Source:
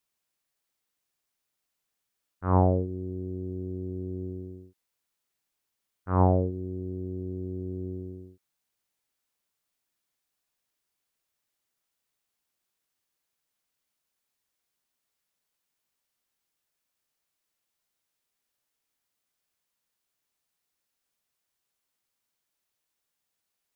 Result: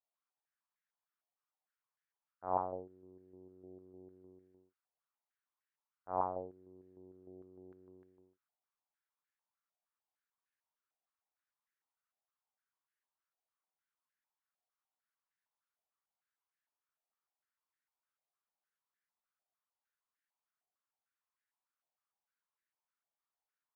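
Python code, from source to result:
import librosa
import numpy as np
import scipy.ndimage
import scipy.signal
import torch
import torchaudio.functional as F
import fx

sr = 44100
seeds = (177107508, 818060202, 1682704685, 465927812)

y = fx.filter_held_bandpass(x, sr, hz=6.6, low_hz=720.0, high_hz=1700.0)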